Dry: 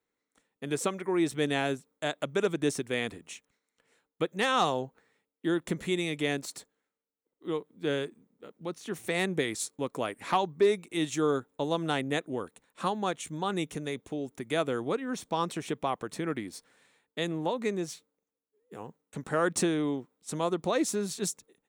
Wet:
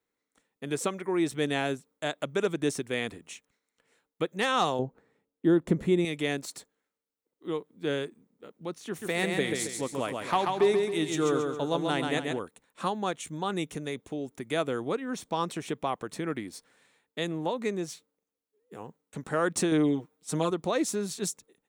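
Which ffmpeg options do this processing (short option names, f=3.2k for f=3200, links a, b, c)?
-filter_complex "[0:a]asettb=1/sr,asplit=3[a][b][c];[a]atrim=end=4.794[d];[b]atrim=start=4.79:end=6.05,asetpts=PTS-STARTPTS,afade=t=in:d=0.004:c=qsin,afade=t=out:st=1.256:d=0.004:c=qsin,tiltshelf=f=1.1k:g=7.5[e];[c]atrim=start=6.046[f];[d][e]acrossfade=d=0.004:c1=hsin:c2=qsin[g];[g][f]acrossfade=d=0.004:c1=qsin:c2=hsin,asettb=1/sr,asplit=3[h][i][j];[h]atrim=end=8.884[k];[i]atrim=start=8.88:end=12.39,asetpts=PTS-STARTPTS,afade=t=in:d=0.004:c=qsin,afade=t=out:st=3.506:d=0.004:c=qsin,aecho=1:1:136|272|408|544|680:0.631|0.259|0.106|0.0435|0.0178,atrim=end_sample=154791[l];[j]atrim=start=12.386[m];[k][l]acrossfade=d=0.004:c1=hsin:c2=qsin[n];[n][m]acrossfade=d=0.004:c1=qsin:c2=hsin,asettb=1/sr,asplit=3[o][p][q];[o]atrim=end=19.714[r];[p]atrim=start=19.71:end=20.51,asetpts=PTS-STARTPTS,afade=t=in:d=0.004:c=qsin,afade=t=out:st=0.796:d=0.004:c=qsin,aecho=1:1:6.5:0.95,atrim=end_sample=35280[s];[q]atrim=start=20.506[t];[r][s]acrossfade=d=0.004:c1=hsin:c2=qsin[u];[u][t]acrossfade=d=0.004:c1=qsin:c2=hsin"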